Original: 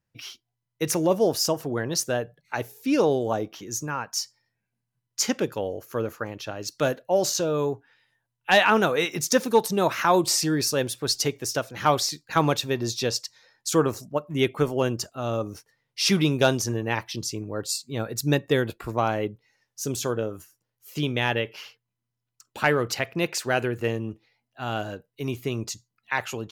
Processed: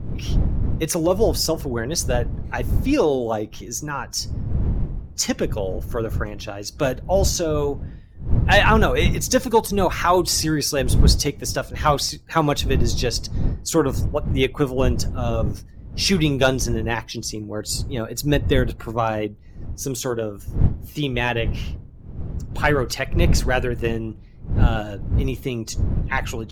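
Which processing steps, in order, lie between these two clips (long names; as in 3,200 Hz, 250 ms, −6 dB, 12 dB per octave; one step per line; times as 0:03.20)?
spectral magnitudes quantised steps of 15 dB
wind on the microphone 96 Hz −27 dBFS
level +3 dB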